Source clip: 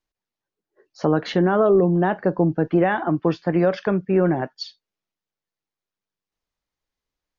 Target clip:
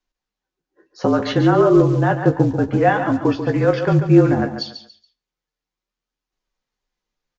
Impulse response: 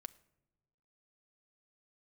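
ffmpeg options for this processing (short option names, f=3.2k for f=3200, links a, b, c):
-filter_complex "[0:a]bandreject=f=690:w=21,asplit=2[a][b];[b]adelay=16,volume=-8dB[c];[a][c]amix=inputs=2:normalize=0,afreqshift=-39,acrusher=bits=8:mode=log:mix=0:aa=0.000001,flanger=delay=2.6:depth=4.2:regen=68:speed=0.63:shape=triangular,aecho=1:1:141|282|423:0.355|0.103|0.0298,asplit=2[d][e];[1:a]atrim=start_sample=2205,afade=t=out:st=0.27:d=0.01,atrim=end_sample=12348[f];[e][f]afir=irnorm=-1:irlink=0,volume=11.5dB[g];[d][g]amix=inputs=2:normalize=0,aresample=16000,aresample=44100,volume=-2.5dB"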